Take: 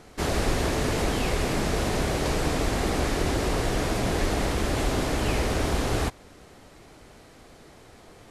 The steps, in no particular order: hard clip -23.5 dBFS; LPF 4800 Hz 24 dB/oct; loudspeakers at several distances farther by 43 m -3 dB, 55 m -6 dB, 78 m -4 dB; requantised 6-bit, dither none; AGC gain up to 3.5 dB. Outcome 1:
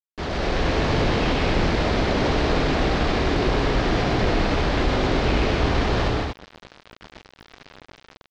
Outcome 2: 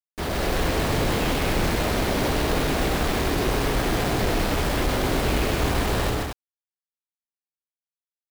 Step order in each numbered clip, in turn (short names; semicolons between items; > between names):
hard clip > AGC > loudspeakers at several distances > requantised > LPF; LPF > requantised > AGC > hard clip > loudspeakers at several distances